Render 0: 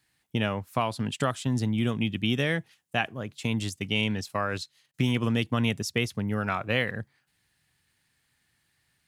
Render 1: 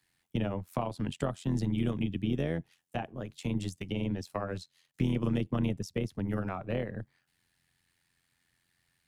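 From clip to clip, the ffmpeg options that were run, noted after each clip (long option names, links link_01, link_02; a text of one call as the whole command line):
ffmpeg -i in.wav -filter_complex "[0:a]acrossover=split=150|840[link_01][link_02][link_03];[link_03]acompressor=threshold=-40dB:ratio=10[link_04];[link_01][link_02][link_04]amix=inputs=3:normalize=0,tremolo=f=87:d=0.75" out.wav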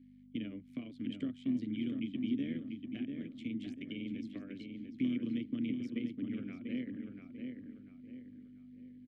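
ffmpeg -i in.wav -filter_complex "[0:a]aeval=exprs='val(0)+0.00708*(sin(2*PI*50*n/s)+sin(2*PI*2*50*n/s)/2+sin(2*PI*3*50*n/s)/3+sin(2*PI*4*50*n/s)/4+sin(2*PI*5*50*n/s)/5)':channel_layout=same,asplit=3[link_01][link_02][link_03];[link_01]bandpass=frequency=270:width_type=q:width=8,volume=0dB[link_04];[link_02]bandpass=frequency=2290:width_type=q:width=8,volume=-6dB[link_05];[link_03]bandpass=frequency=3010:width_type=q:width=8,volume=-9dB[link_06];[link_04][link_05][link_06]amix=inputs=3:normalize=0,asplit=2[link_07][link_08];[link_08]adelay=692,lowpass=frequency=2700:poles=1,volume=-5dB,asplit=2[link_09][link_10];[link_10]adelay=692,lowpass=frequency=2700:poles=1,volume=0.39,asplit=2[link_11][link_12];[link_12]adelay=692,lowpass=frequency=2700:poles=1,volume=0.39,asplit=2[link_13][link_14];[link_14]adelay=692,lowpass=frequency=2700:poles=1,volume=0.39,asplit=2[link_15][link_16];[link_16]adelay=692,lowpass=frequency=2700:poles=1,volume=0.39[link_17];[link_09][link_11][link_13][link_15][link_17]amix=inputs=5:normalize=0[link_18];[link_07][link_18]amix=inputs=2:normalize=0,volume=4dB" out.wav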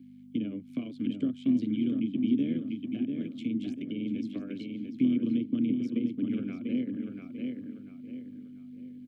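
ffmpeg -i in.wav -filter_complex "[0:a]equalizer=frequency=1900:width=7.6:gain=-14.5,acrossover=split=620[link_01][link_02];[link_02]alimiter=level_in=23dB:limit=-24dB:level=0:latency=1:release=390,volume=-23dB[link_03];[link_01][link_03]amix=inputs=2:normalize=0,highpass=120,volume=8.5dB" out.wav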